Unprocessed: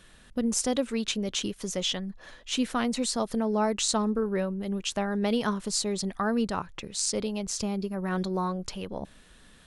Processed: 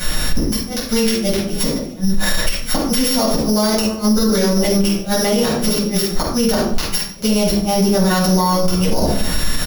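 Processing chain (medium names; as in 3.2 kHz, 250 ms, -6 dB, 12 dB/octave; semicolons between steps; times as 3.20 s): sorted samples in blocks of 8 samples; treble shelf 3 kHz +8 dB; compression 8:1, threshold -37 dBFS, peak gain reduction 19.5 dB; crackle 440 per s -58 dBFS; inverted gate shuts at -26 dBFS, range -39 dB; on a send: frequency-shifting echo 146 ms, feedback 45%, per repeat +120 Hz, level -24 dB; on the sum: simulated room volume 610 m³, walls furnished, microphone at 7.5 m; loudness maximiser +28 dB; trim -6 dB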